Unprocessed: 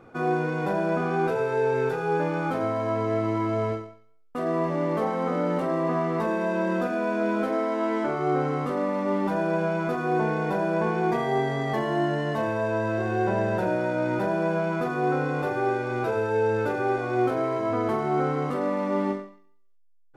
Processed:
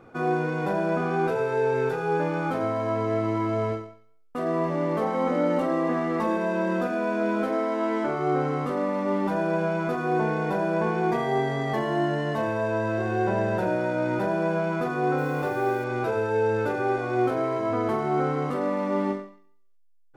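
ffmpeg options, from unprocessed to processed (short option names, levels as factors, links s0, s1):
-filter_complex "[0:a]asettb=1/sr,asplit=3[s0][s1][s2];[s0]atrim=end=5.144[s3];[s1]atrim=start=5.14:end=6.37,asetpts=PTS-STARTPTS,afade=t=in:d=0.004:c=qsin,afade=t=out:st=1.226:d=0.004:c=qsin,aecho=1:1:3.6:0.61,atrim=end_sample=54243[s4];[s2]atrim=start=6.366[s5];[s3][s4]acrossfade=d=0.004:c1=hsin:c2=qsin[s6];[s6][s5]acrossfade=d=0.004:c1=qsin:c2=hsin,asettb=1/sr,asplit=3[s7][s8][s9];[s7]atrim=end=15.184[s10];[s8]atrim=start=15.18:end=15.84,asetpts=PTS-STARTPTS,afade=t=in:d=0.004:c=qsin,afade=t=out:st=0.656:d=0.004:c=qsin,acrusher=bits=7:mix=0:aa=0.5[s11];[s9]atrim=start=15.836[s12];[s10][s11]acrossfade=d=0.004:c1=hsin:c2=qsin[s13];[s13][s12]acrossfade=d=0.004:c1=qsin:c2=hsin"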